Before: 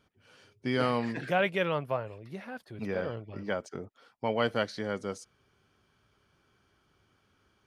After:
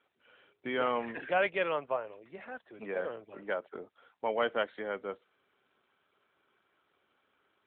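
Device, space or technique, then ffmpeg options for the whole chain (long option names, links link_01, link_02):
telephone: -filter_complex "[0:a]asplit=3[link_01][link_02][link_03];[link_01]afade=type=out:start_time=2.37:duration=0.02[link_04];[link_02]highpass=frequency=97:width=0.5412,highpass=frequency=97:width=1.3066,afade=type=in:start_time=2.37:duration=0.02,afade=type=out:start_time=3.55:duration=0.02[link_05];[link_03]afade=type=in:start_time=3.55:duration=0.02[link_06];[link_04][link_05][link_06]amix=inputs=3:normalize=0,highpass=380,lowpass=3600" -ar 8000 -c:a libopencore_amrnb -b:a 12200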